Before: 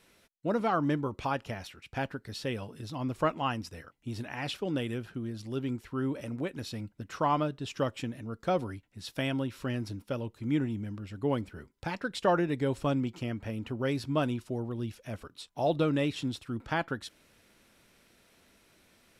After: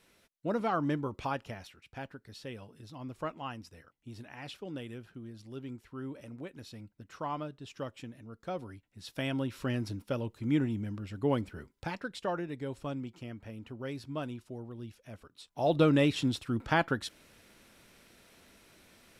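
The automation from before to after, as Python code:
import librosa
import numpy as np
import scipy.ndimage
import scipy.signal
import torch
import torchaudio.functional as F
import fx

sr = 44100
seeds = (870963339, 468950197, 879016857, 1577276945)

y = fx.gain(x, sr, db=fx.line((1.28, -2.5), (1.99, -9.0), (8.57, -9.0), (9.57, 0.5), (11.71, 0.5), (12.32, -8.5), (15.31, -8.5), (15.83, 3.5)))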